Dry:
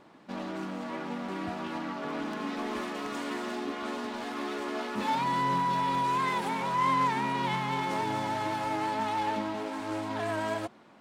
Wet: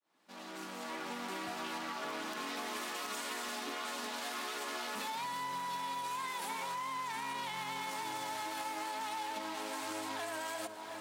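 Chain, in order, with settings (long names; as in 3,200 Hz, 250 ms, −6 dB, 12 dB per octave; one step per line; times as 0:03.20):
fade in at the beginning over 1.89 s
RIAA equalisation recording
hum removal 71.58 Hz, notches 9
brickwall limiter −25.5 dBFS, peak gain reduction 9 dB
delay that swaps between a low-pass and a high-pass 360 ms, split 1,300 Hz, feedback 67%, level −14 dB
on a send at −18.5 dB: convolution reverb RT60 0.65 s, pre-delay 43 ms
on the sum: downward compressor 6 to 1, threshold −42 dBFS, peak gain reduction 12 dB
level +4.5 dB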